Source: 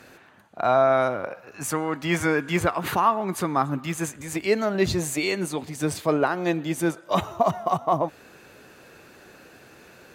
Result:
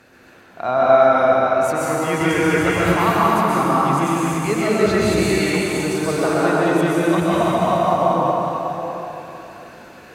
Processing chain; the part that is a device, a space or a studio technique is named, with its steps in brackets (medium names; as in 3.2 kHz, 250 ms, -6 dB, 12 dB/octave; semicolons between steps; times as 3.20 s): chunks repeated in reverse 334 ms, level -5 dB; swimming-pool hall (reverberation RT60 3.1 s, pre-delay 117 ms, DRR -7 dB; treble shelf 5.3 kHz -5 dB); trim -1.5 dB